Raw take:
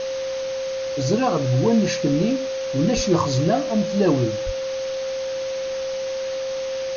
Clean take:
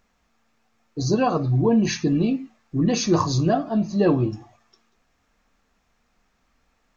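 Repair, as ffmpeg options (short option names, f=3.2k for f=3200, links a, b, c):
-filter_complex "[0:a]bandreject=f=530:w=30,asplit=3[a][b][c];[a]afade=t=out:st=2.95:d=0.02[d];[b]highpass=f=140:w=0.5412,highpass=f=140:w=1.3066,afade=t=in:st=2.95:d=0.02,afade=t=out:st=3.07:d=0.02[e];[c]afade=t=in:st=3.07:d=0.02[f];[d][e][f]amix=inputs=3:normalize=0,asplit=3[g][h][i];[g]afade=t=out:st=4.45:d=0.02[j];[h]highpass=f=140:w=0.5412,highpass=f=140:w=1.3066,afade=t=in:st=4.45:d=0.02,afade=t=out:st=4.57:d=0.02[k];[i]afade=t=in:st=4.57:d=0.02[l];[j][k][l]amix=inputs=3:normalize=0,afwtdn=0.022"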